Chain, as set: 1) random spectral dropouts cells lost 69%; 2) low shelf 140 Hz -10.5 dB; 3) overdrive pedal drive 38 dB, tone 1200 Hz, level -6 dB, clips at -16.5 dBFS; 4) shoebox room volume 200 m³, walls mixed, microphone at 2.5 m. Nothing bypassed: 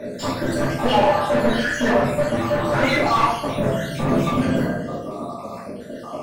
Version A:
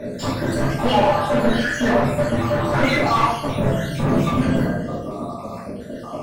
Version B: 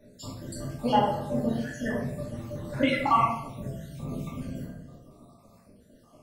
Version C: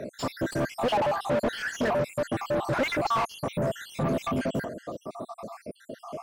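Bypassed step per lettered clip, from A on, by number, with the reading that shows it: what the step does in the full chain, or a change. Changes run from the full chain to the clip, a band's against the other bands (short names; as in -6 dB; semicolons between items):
2, 125 Hz band +3.5 dB; 3, crest factor change +4.5 dB; 4, echo-to-direct 7.5 dB to none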